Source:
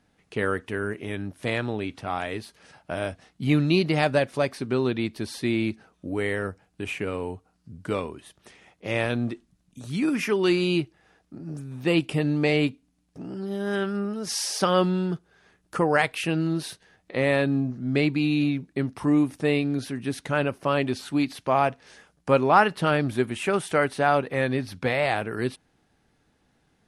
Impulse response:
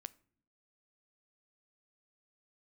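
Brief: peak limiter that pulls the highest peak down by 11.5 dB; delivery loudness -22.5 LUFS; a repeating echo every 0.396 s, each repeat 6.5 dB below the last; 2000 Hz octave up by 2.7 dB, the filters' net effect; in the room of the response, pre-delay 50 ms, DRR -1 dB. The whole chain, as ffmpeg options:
-filter_complex "[0:a]equalizer=f=2k:t=o:g=3.5,alimiter=limit=-14.5dB:level=0:latency=1,aecho=1:1:396|792|1188|1584|1980|2376:0.473|0.222|0.105|0.0491|0.0231|0.0109,asplit=2[a][b];[1:a]atrim=start_sample=2205,adelay=50[c];[b][c]afir=irnorm=-1:irlink=0,volume=6dB[d];[a][d]amix=inputs=2:normalize=0,volume=1dB"

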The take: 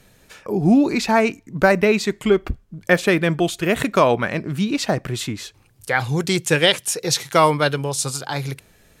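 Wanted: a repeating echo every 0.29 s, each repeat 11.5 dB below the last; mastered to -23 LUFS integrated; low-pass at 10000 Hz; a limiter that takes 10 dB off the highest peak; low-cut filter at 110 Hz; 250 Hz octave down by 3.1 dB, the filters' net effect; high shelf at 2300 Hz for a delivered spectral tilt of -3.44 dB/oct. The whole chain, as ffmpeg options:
-af "highpass=110,lowpass=10k,equalizer=f=250:t=o:g=-4,highshelf=f=2.3k:g=5,alimiter=limit=-9dB:level=0:latency=1,aecho=1:1:290|580|870:0.266|0.0718|0.0194,volume=-1dB"

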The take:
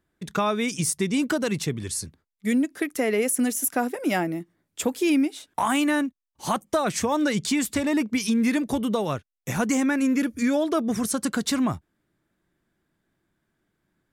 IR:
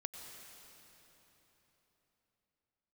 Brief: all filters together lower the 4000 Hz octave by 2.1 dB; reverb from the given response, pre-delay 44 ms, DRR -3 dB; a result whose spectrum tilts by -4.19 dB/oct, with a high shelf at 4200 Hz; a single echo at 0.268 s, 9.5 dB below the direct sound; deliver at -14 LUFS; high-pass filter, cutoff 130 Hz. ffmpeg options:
-filter_complex "[0:a]highpass=130,equalizer=f=4k:t=o:g=-5,highshelf=f=4.2k:g=3.5,aecho=1:1:268:0.335,asplit=2[a][b];[1:a]atrim=start_sample=2205,adelay=44[c];[b][c]afir=irnorm=-1:irlink=0,volume=5dB[d];[a][d]amix=inputs=2:normalize=0,volume=6dB"

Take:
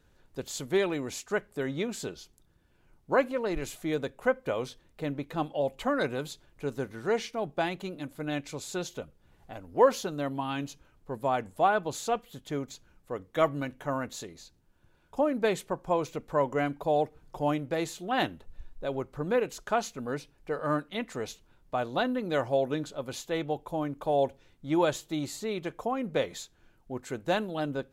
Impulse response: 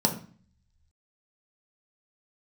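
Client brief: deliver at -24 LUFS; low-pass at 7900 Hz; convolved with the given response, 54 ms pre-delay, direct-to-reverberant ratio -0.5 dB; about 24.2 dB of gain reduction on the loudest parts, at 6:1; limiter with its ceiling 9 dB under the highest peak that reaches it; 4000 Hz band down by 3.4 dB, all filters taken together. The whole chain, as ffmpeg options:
-filter_complex "[0:a]lowpass=7.9k,equalizer=f=4k:t=o:g=-4,acompressor=threshold=-43dB:ratio=6,alimiter=level_in=14.5dB:limit=-24dB:level=0:latency=1,volume=-14.5dB,asplit=2[a][b];[1:a]atrim=start_sample=2205,adelay=54[c];[b][c]afir=irnorm=-1:irlink=0,volume=-10.5dB[d];[a][d]amix=inputs=2:normalize=0,volume=18.5dB"

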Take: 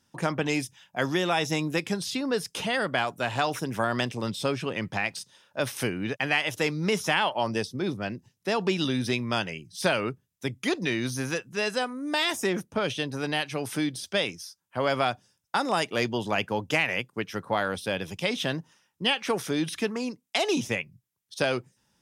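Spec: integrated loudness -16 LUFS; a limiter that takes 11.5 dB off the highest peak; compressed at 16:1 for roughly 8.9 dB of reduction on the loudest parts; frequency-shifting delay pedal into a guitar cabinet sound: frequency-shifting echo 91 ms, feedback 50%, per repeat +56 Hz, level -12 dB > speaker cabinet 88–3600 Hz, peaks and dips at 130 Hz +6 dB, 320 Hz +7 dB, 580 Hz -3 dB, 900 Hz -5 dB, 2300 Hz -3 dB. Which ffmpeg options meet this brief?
-filter_complex "[0:a]acompressor=threshold=-29dB:ratio=16,alimiter=level_in=0.5dB:limit=-24dB:level=0:latency=1,volume=-0.5dB,asplit=6[a][b][c][d][e][f];[b]adelay=91,afreqshift=56,volume=-12dB[g];[c]adelay=182,afreqshift=112,volume=-18dB[h];[d]adelay=273,afreqshift=168,volume=-24dB[i];[e]adelay=364,afreqshift=224,volume=-30.1dB[j];[f]adelay=455,afreqshift=280,volume=-36.1dB[k];[a][g][h][i][j][k]amix=inputs=6:normalize=0,highpass=88,equalizer=f=130:t=q:w=4:g=6,equalizer=f=320:t=q:w=4:g=7,equalizer=f=580:t=q:w=4:g=-3,equalizer=f=900:t=q:w=4:g=-5,equalizer=f=2.3k:t=q:w=4:g=-3,lowpass=f=3.6k:w=0.5412,lowpass=f=3.6k:w=1.3066,volume=19.5dB"

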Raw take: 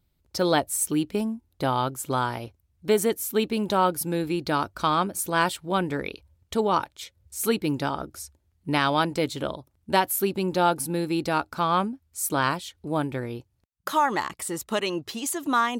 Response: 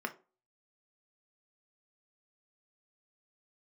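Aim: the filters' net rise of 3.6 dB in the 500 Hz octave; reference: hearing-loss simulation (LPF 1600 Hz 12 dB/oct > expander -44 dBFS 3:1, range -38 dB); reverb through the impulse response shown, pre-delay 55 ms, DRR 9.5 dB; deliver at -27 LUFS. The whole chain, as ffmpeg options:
-filter_complex "[0:a]equalizer=f=500:t=o:g=4.5,asplit=2[a][b];[1:a]atrim=start_sample=2205,adelay=55[c];[b][c]afir=irnorm=-1:irlink=0,volume=-13dB[d];[a][d]amix=inputs=2:normalize=0,lowpass=1.6k,agate=range=-38dB:threshold=-44dB:ratio=3,volume=-2dB"

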